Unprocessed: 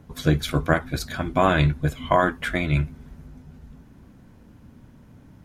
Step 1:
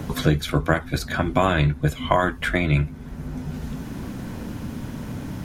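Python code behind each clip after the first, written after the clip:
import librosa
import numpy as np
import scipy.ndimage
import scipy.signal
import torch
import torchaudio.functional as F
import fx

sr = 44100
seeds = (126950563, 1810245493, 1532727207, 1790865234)

y = fx.band_squash(x, sr, depth_pct=70)
y = F.gain(torch.from_numpy(y), 2.0).numpy()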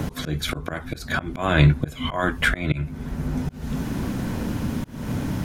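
y = fx.auto_swell(x, sr, attack_ms=279.0)
y = F.gain(torch.from_numpy(y), 5.5).numpy()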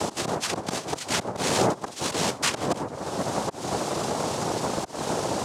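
y = fx.noise_vocoder(x, sr, seeds[0], bands=2)
y = fx.band_squash(y, sr, depth_pct=70)
y = F.gain(torch.from_numpy(y), -1.5).numpy()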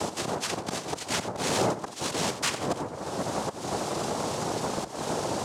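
y = 10.0 ** (-12.5 / 20.0) * np.tanh(x / 10.0 ** (-12.5 / 20.0))
y = y + 10.0 ** (-13.0 / 20.0) * np.pad(y, (int(88 * sr / 1000.0), 0))[:len(y)]
y = F.gain(torch.from_numpy(y), -2.5).numpy()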